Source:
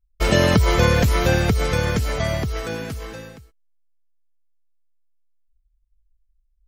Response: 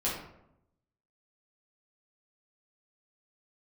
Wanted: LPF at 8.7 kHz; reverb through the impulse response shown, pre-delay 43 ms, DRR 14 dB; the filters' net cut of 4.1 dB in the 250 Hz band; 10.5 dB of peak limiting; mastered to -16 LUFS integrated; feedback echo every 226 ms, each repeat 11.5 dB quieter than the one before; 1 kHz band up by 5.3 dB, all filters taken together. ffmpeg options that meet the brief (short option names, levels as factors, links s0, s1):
-filter_complex "[0:a]lowpass=8700,equalizer=f=250:t=o:g=-7,equalizer=f=1000:t=o:g=7,alimiter=limit=0.2:level=0:latency=1,aecho=1:1:226|452|678:0.266|0.0718|0.0194,asplit=2[s0][s1];[1:a]atrim=start_sample=2205,adelay=43[s2];[s1][s2]afir=irnorm=-1:irlink=0,volume=0.0891[s3];[s0][s3]amix=inputs=2:normalize=0,volume=2.37"